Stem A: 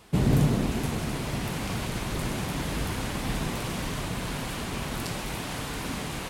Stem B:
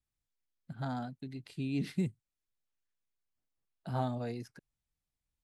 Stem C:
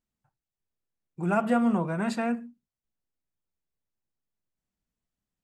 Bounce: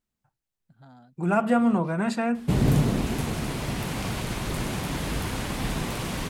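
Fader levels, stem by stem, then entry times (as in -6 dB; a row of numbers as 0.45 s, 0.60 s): +1.0 dB, -14.0 dB, +2.5 dB; 2.35 s, 0.00 s, 0.00 s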